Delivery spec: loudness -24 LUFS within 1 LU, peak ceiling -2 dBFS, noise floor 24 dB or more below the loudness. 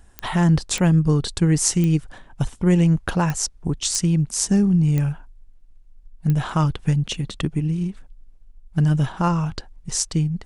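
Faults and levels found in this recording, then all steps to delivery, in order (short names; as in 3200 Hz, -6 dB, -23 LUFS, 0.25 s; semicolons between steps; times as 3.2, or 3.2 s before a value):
clicks 7; loudness -21.0 LUFS; peak -3.0 dBFS; loudness target -24.0 LUFS
-> de-click; gain -3 dB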